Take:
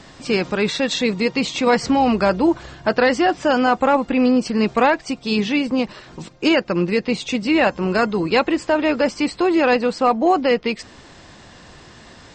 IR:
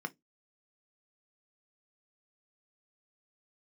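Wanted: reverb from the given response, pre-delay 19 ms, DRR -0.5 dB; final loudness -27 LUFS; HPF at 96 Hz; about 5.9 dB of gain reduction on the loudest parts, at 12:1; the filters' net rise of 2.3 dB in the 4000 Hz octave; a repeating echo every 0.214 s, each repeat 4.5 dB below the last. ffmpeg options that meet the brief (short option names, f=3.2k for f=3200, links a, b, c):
-filter_complex "[0:a]highpass=96,equalizer=f=4k:t=o:g=3,acompressor=threshold=-17dB:ratio=12,aecho=1:1:214|428|642|856|1070|1284|1498|1712|1926:0.596|0.357|0.214|0.129|0.0772|0.0463|0.0278|0.0167|0.01,asplit=2[a][b];[1:a]atrim=start_sample=2205,adelay=19[c];[b][c]afir=irnorm=-1:irlink=0,volume=-1.5dB[d];[a][d]amix=inputs=2:normalize=0,volume=-9dB"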